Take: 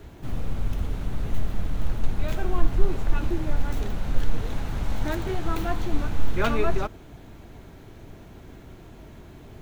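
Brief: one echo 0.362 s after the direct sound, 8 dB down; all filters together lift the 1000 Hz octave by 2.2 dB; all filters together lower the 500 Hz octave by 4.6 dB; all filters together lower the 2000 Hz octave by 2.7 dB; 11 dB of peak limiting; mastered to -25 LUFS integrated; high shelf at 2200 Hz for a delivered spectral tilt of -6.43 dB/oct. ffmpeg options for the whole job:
-af "equalizer=f=500:t=o:g=-9,equalizer=f=1k:t=o:g=8,equalizer=f=2k:t=o:g=-5,highshelf=f=2.2k:g=-3.5,alimiter=limit=-16dB:level=0:latency=1,aecho=1:1:362:0.398,volume=7dB"

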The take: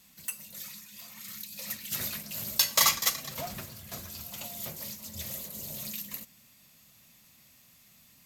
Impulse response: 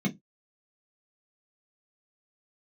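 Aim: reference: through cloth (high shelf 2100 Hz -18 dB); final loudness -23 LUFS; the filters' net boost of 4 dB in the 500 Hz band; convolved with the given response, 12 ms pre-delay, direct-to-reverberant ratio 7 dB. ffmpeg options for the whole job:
-filter_complex "[0:a]equalizer=f=500:t=o:g=7,asplit=2[a][b];[1:a]atrim=start_sample=2205,adelay=12[c];[b][c]afir=irnorm=-1:irlink=0,volume=-13dB[d];[a][d]amix=inputs=2:normalize=0,highshelf=f=2.1k:g=-18,volume=14dB"

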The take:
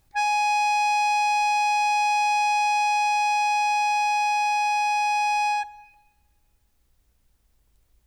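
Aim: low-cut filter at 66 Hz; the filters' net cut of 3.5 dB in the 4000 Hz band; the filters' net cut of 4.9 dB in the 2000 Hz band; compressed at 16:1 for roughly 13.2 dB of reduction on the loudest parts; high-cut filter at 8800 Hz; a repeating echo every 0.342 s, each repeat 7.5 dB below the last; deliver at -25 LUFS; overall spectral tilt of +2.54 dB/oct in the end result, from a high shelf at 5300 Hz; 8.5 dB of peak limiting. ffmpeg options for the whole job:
-af "highpass=66,lowpass=8.8k,equalizer=f=2k:t=o:g=-5.5,equalizer=f=4k:t=o:g=-4.5,highshelf=f=5.3k:g=3.5,acompressor=threshold=-34dB:ratio=16,alimiter=level_in=11dB:limit=-24dB:level=0:latency=1,volume=-11dB,aecho=1:1:342|684|1026|1368|1710:0.422|0.177|0.0744|0.0312|0.0131,volume=17dB"

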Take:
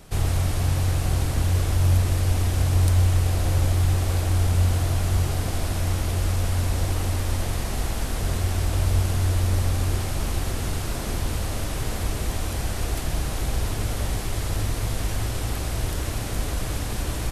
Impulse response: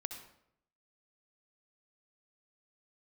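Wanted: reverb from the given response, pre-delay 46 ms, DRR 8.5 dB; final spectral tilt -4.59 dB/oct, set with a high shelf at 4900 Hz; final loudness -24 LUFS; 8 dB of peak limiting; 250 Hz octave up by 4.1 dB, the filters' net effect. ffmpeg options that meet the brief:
-filter_complex "[0:a]equalizer=f=250:t=o:g=5.5,highshelf=f=4.9k:g=5.5,alimiter=limit=-16dB:level=0:latency=1,asplit=2[a][b];[1:a]atrim=start_sample=2205,adelay=46[c];[b][c]afir=irnorm=-1:irlink=0,volume=-7.5dB[d];[a][d]amix=inputs=2:normalize=0,volume=1dB"

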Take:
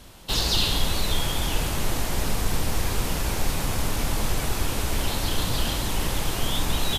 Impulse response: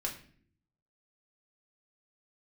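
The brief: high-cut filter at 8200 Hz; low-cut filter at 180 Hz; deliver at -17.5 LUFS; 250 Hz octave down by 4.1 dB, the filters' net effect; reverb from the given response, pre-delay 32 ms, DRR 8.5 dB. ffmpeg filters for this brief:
-filter_complex "[0:a]highpass=180,lowpass=8.2k,equalizer=f=250:t=o:g=-3.5,asplit=2[a][b];[1:a]atrim=start_sample=2205,adelay=32[c];[b][c]afir=irnorm=-1:irlink=0,volume=-10.5dB[d];[a][d]amix=inputs=2:normalize=0,volume=10.5dB"

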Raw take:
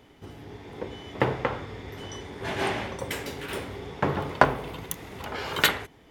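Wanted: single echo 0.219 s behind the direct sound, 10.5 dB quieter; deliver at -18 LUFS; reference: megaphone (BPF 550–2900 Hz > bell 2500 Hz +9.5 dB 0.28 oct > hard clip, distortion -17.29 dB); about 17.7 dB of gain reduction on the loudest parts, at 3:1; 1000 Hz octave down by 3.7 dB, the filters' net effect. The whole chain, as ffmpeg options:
-af "equalizer=f=1k:t=o:g=-4,acompressor=threshold=-39dB:ratio=3,highpass=550,lowpass=2.9k,equalizer=f=2.5k:t=o:w=0.28:g=9.5,aecho=1:1:219:0.299,asoftclip=type=hard:threshold=-25dB,volume=25dB"

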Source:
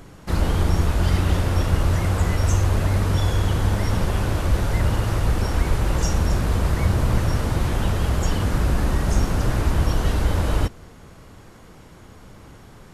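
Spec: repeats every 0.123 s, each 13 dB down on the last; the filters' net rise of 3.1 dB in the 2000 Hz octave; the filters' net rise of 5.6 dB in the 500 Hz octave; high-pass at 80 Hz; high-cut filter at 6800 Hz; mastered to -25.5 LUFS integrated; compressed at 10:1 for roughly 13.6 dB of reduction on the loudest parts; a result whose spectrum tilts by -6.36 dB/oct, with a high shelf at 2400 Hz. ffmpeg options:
-af "highpass=80,lowpass=6.8k,equalizer=f=500:t=o:g=7,equalizer=f=2k:t=o:g=7.5,highshelf=f=2.4k:g=-8.5,acompressor=threshold=-31dB:ratio=10,aecho=1:1:123|246|369:0.224|0.0493|0.0108,volume=10.5dB"

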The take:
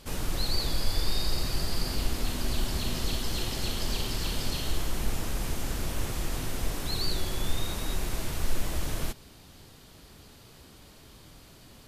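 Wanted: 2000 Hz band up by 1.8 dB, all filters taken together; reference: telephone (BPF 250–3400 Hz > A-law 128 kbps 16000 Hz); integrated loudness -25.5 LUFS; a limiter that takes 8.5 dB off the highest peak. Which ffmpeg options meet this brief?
-af "equalizer=f=2k:t=o:g=3,alimiter=limit=-21.5dB:level=0:latency=1,highpass=250,lowpass=3.4k,volume=13.5dB" -ar 16000 -c:a pcm_alaw

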